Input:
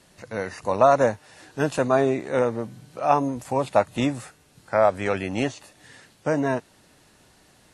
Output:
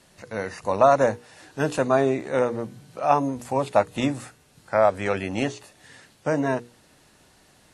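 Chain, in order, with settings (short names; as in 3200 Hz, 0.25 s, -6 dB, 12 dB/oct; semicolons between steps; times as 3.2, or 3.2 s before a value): notches 60/120/180/240/300/360/420/480 Hz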